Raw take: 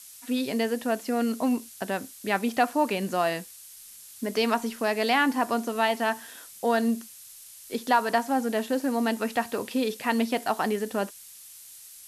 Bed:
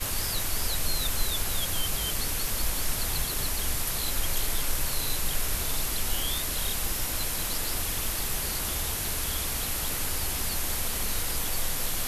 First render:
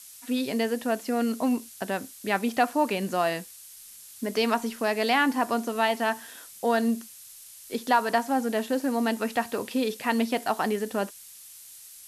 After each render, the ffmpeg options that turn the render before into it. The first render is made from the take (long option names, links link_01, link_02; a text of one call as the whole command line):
ffmpeg -i in.wav -af anull out.wav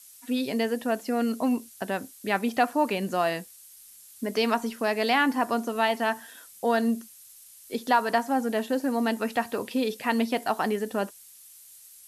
ffmpeg -i in.wav -af "afftdn=noise_reduction=6:noise_floor=-48" out.wav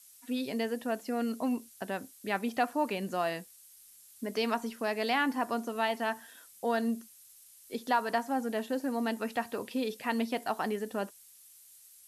ffmpeg -i in.wav -af "volume=-6dB" out.wav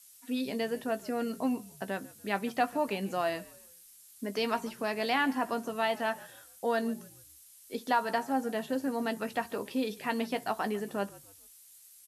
ffmpeg -i in.wav -filter_complex "[0:a]asplit=2[link_01][link_02];[link_02]adelay=15,volume=-10.5dB[link_03];[link_01][link_03]amix=inputs=2:normalize=0,asplit=4[link_04][link_05][link_06][link_07];[link_05]adelay=144,afreqshift=-52,volume=-21dB[link_08];[link_06]adelay=288,afreqshift=-104,volume=-29.4dB[link_09];[link_07]adelay=432,afreqshift=-156,volume=-37.8dB[link_10];[link_04][link_08][link_09][link_10]amix=inputs=4:normalize=0" out.wav